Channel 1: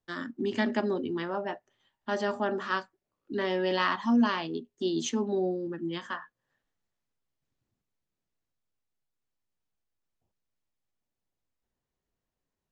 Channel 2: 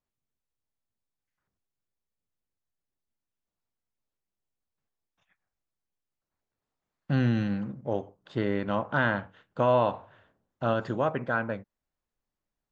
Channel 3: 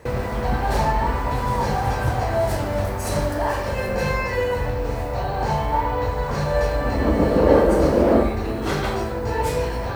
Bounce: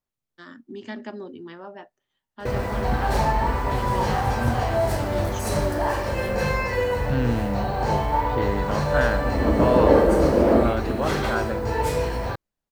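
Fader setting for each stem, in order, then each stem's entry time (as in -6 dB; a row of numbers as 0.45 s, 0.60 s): -7.0 dB, +0.5 dB, -1.0 dB; 0.30 s, 0.00 s, 2.40 s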